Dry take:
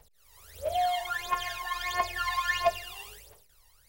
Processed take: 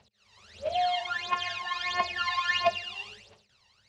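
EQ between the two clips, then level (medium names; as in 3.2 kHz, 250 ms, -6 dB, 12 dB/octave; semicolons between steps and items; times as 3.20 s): cabinet simulation 110–6000 Hz, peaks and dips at 110 Hz +6 dB, 210 Hz +10 dB, 2.7 kHz +7 dB, 4.1 kHz +5 dB; band-stop 480 Hz, Q 12; 0.0 dB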